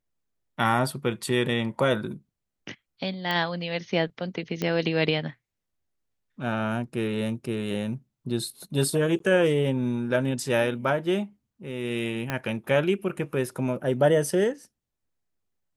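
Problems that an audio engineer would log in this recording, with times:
0:03.31: click −15 dBFS
0:04.62: click −14 dBFS
0:09.19–0:09.20: drop-out
0:12.30: click −13 dBFS

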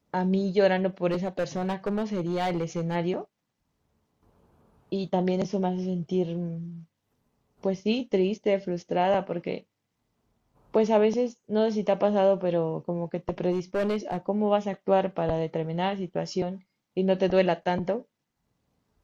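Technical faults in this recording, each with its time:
0:01.10–0:02.96: clipping −23 dBFS
0:13.51–0:14.17: clipping −22.5 dBFS

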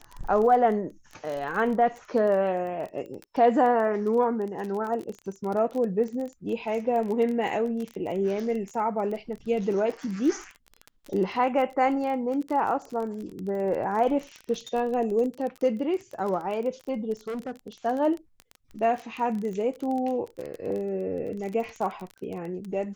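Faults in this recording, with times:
surface crackle 23 per second −31 dBFS
0:17.27–0:17.68: clipping −29.5 dBFS

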